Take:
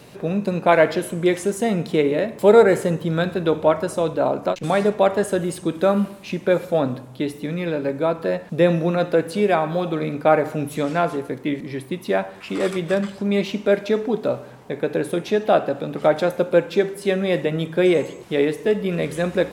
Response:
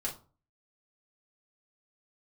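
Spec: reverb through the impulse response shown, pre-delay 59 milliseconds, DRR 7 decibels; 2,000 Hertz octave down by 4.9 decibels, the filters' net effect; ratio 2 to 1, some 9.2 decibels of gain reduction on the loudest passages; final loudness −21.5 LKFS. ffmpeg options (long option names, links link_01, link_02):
-filter_complex "[0:a]equalizer=frequency=2000:width_type=o:gain=-6.5,acompressor=threshold=-25dB:ratio=2,asplit=2[link_01][link_02];[1:a]atrim=start_sample=2205,adelay=59[link_03];[link_02][link_03]afir=irnorm=-1:irlink=0,volume=-9.5dB[link_04];[link_01][link_04]amix=inputs=2:normalize=0,volume=4.5dB"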